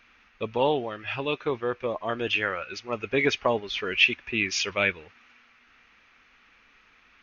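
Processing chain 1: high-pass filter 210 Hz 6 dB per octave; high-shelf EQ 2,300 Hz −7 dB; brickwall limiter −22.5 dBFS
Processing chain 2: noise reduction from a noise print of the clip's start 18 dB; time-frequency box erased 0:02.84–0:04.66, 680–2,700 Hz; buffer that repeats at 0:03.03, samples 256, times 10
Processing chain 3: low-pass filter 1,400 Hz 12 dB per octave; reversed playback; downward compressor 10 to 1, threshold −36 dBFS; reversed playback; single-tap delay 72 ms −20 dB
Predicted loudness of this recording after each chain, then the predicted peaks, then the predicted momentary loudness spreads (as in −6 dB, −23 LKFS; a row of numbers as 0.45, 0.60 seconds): −34.0, −28.5, −41.5 LKFS; −22.5, −8.5, −25.5 dBFS; 6, 8, 3 LU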